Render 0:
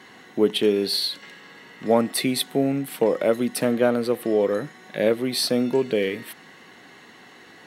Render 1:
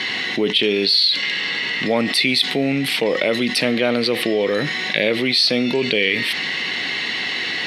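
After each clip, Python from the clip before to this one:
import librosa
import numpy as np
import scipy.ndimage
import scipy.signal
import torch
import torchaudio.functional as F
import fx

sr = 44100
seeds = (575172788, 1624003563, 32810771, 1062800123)

y = scipy.signal.sosfilt(scipy.signal.butter(2, 9500.0, 'lowpass', fs=sr, output='sos'), x)
y = fx.band_shelf(y, sr, hz=3200.0, db=14.0, octaves=1.7)
y = fx.env_flatten(y, sr, amount_pct=70)
y = y * 10.0 ** (-6.0 / 20.0)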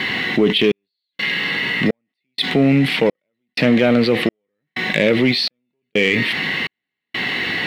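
y = fx.bass_treble(x, sr, bass_db=7, treble_db=-14)
y = fx.leveller(y, sr, passes=1)
y = fx.step_gate(y, sr, bpm=126, pattern='xxxxxx....', floor_db=-60.0, edge_ms=4.5)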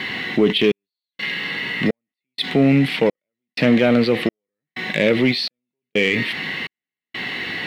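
y = fx.upward_expand(x, sr, threshold_db=-32.0, expansion=1.5)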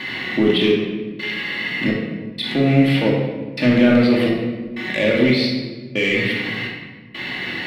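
y = fx.room_shoebox(x, sr, seeds[0], volume_m3=1100.0, walls='mixed', distance_m=2.5)
y = y * 10.0 ** (-4.5 / 20.0)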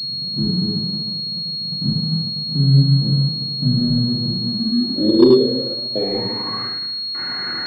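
y = fx.filter_sweep_lowpass(x, sr, from_hz=160.0, to_hz=1400.0, start_s=4.34, end_s=6.78, q=7.8)
y = fx.leveller(y, sr, passes=1)
y = fx.pwm(y, sr, carrier_hz=4300.0)
y = y * 10.0 ** (-7.5 / 20.0)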